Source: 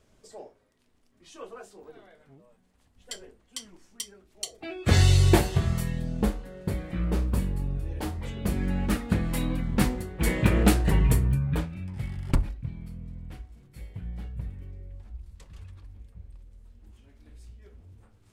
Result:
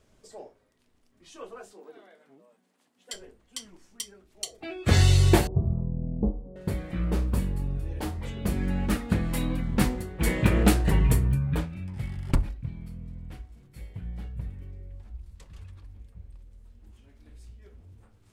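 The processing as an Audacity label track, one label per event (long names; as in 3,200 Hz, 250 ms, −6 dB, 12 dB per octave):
1.730000	3.140000	high-pass filter 210 Hz 24 dB per octave
5.470000	6.560000	Bessel low-pass filter 500 Hz, order 8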